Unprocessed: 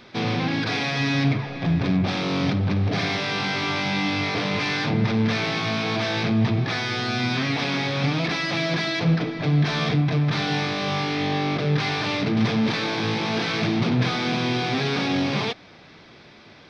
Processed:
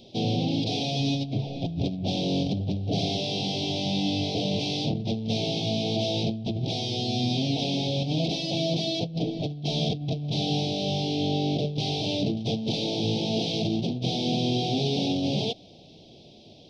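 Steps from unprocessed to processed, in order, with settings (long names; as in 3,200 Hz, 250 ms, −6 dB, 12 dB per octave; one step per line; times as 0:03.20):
elliptic band-stop filter 710–3,000 Hz, stop band 60 dB
compressor whose output falls as the input rises −24 dBFS, ratio −0.5
level −1.5 dB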